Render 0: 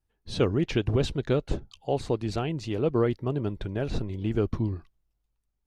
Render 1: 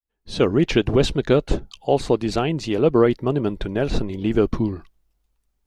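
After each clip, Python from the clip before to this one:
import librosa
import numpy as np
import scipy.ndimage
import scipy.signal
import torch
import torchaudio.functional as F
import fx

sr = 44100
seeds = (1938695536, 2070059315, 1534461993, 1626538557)

y = fx.fade_in_head(x, sr, length_s=0.57)
y = fx.peak_eq(y, sr, hz=100.0, db=-9.5, octaves=0.79)
y = y * 10.0 ** (9.0 / 20.0)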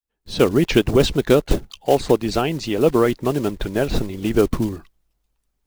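y = fx.block_float(x, sr, bits=5)
y = fx.hpss(y, sr, part='percussive', gain_db=5)
y = y * 10.0 ** (-2.0 / 20.0)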